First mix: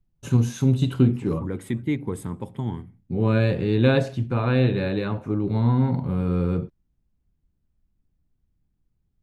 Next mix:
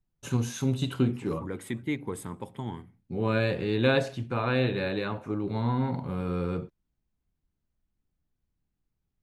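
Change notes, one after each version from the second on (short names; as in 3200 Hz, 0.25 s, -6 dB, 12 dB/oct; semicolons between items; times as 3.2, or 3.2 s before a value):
master: add low shelf 350 Hz -10 dB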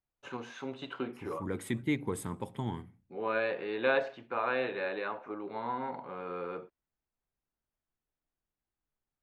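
first voice: add BPF 540–2200 Hz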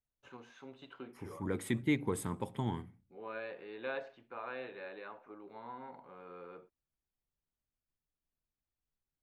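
first voice -11.5 dB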